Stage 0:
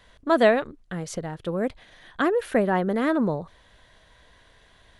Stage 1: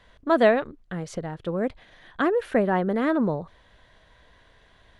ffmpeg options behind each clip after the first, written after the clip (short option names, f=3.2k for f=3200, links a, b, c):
-af "lowpass=f=3.6k:p=1"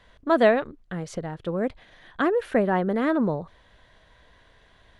-af anull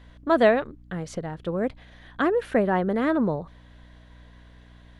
-af "aeval=exprs='val(0)+0.00355*(sin(2*PI*60*n/s)+sin(2*PI*2*60*n/s)/2+sin(2*PI*3*60*n/s)/3+sin(2*PI*4*60*n/s)/4+sin(2*PI*5*60*n/s)/5)':c=same"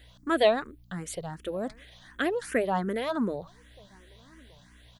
-filter_complex "[0:a]crystalizer=i=5:c=0,asplit=2[a][b];[b]adelay=1224,volume=-28dB,highshelf=f=4k:g=-27.6[c];[a][c]amix=inputs=2:normalize=0,asplit=2[d][e];[e]afreqshift=2.7[f];[d][f]amix=inputs=2:normalize=1,volume=-3.5dB"